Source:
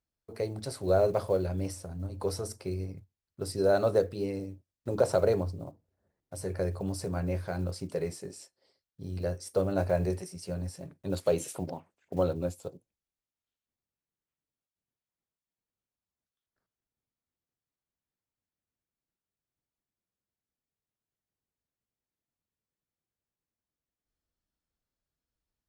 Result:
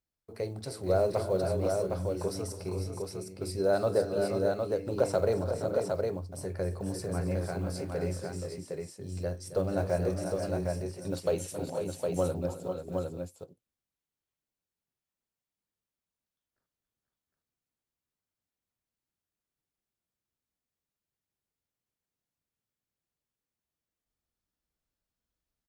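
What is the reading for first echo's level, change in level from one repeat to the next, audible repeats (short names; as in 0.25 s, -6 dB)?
-16.5 dB, no steady repeat, 5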